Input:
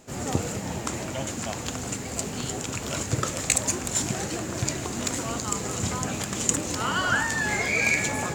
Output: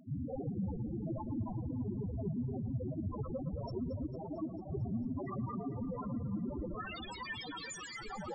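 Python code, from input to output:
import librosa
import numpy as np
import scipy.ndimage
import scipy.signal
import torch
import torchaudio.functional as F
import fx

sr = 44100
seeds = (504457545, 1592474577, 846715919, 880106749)

y = scipy.signal.sosfilt(scipy.signal.butter(2, 3200.0, 'lowpass', fs=sr, output='sos'), x)
y = (np.mod(10.0 ** (26.5 / 20.0) * y + 1.0, 2.0) - 1.0) / 10.0 ** (26.5 / 20.0)
y = fx.echo_diffused(y, sr, ms=510, feedback_pct=48, wet_db=-13.5)
y = fx.vibrato(y, sr, rate_hz=2.5, depth_cents=8.2)
y = fx.spec_topn(y, sr, count=2)
y = fx.highpass(y, sr, hz=280.0, slope=6, at=(4.06, 4.69))
y = fx.echo_alternate(y, sr, ms=112, hz=1300.0, feedback_pct=83, wet_db=-12.0)
y = F.gain(torch.from_numpy(y), 6.0).numpy()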